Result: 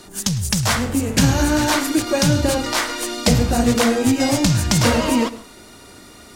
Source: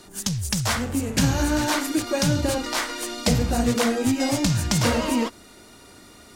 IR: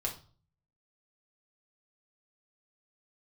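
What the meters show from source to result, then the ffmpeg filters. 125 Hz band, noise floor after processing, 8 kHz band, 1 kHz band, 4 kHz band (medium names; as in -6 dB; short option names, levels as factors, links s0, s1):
+5.0 dB, -43 dBFS, +5.0 dB, +5.0 dB, +5.0 dB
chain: -filter_complex "[0:a]asplit=2[s0][s1];[1:a]atrim=start_sample=2205,adelay=104[s2];[s1][s2]afir=irnorm=-1:irlink=0,volume=0.106[s3];[s0][s3]amix=inputs=2:normalize=0,volume=1.78"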